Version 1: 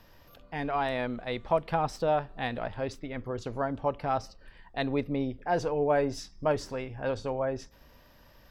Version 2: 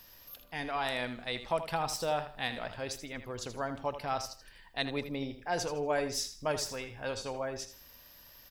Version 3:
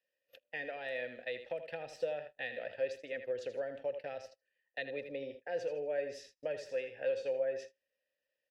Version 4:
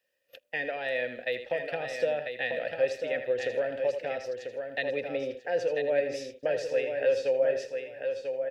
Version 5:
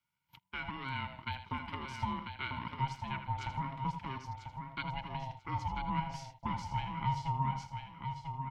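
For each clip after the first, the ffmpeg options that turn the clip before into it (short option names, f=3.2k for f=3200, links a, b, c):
-filter_complex "[0:a]crystalizer=i=7:c=0,asplit=2[a][b];[b]aecho=0:1:80|160|240:0.282|0.0789|0.0221[c];[a][c]amix=inputs=2:normalize=0,volume=-7.5dB"
-filter_complex "[0:a]acrossover=split=160[a][b];[b]acompressor=threshold=-42dB:ratio=3[c];[a][c]amix=inputs=2:normalize=0,agate=range=-29dB:threshold=-47dB:ratio=16:detection=peak,asplit=3[d][e][f];[d]bandpass=f=530:t=q:w=8,volume=0dB[g];[e]bandpass=f=1.84k:t=q:w=8,volume=-6dB[h];[f]bandpass=f=2.48k:t=q:w=8,volume=-9dB[i];[g][h][i]amix=inputs=3:normalize=0,volume=13.5dB"
-af "aecho=1:1:993|1986|2979:0.473|0.104|0.0229,volume=8.5dB"
-af "aeval=exprs='val(0)*sin(2*PI*400*n/s)':c=same,volume=-5dB"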